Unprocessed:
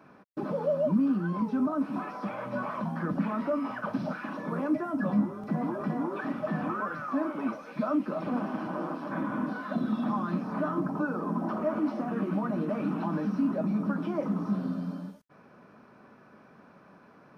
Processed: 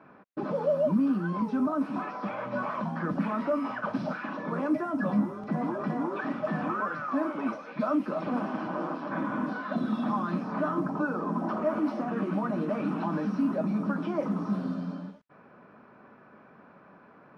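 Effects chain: low shelf 310 Hz -4 dB; low-pass opened by the level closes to 2400 Hz, open at -25.5 dBFS; gain +2.5 dB

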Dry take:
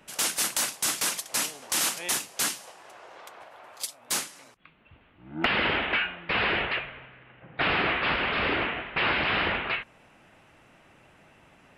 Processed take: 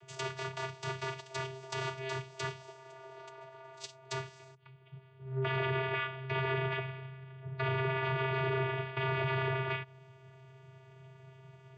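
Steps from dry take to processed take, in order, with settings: treble ducked by the level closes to 2500 Hz, closed at -25.5 dBFS; high shelf 3400 Hz +6.5 dB; vocoder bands 16, square 132 Hz; limiter -23.5 dBFS, peak gain reduction 7.5 dB; gain -2 dB

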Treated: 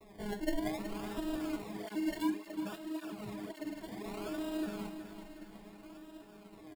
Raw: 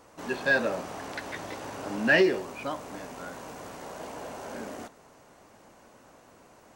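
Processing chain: arpeggiated vocoder bare fifth, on G#3, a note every 0.388 s; compressor 3:1, threshold -43 dBFS, peak gain reduction 20 dB; decimation with a swept rate 28×, swing 60% 0.61 Hz; low shelf 280 Hz +10 dB; notch 6000 Hz, Q 7.3; comb 6.1 ms, depth 34%; feedback echo 0.371 s, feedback 54%, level -10 dB; reverb RT60 0.40 s, pre-delay 3 ms, DRR 8.5 dB; 1.62–4.06 tape flanging out of phase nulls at 1.8 Hz, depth 3.6 ms; gain +2 dB

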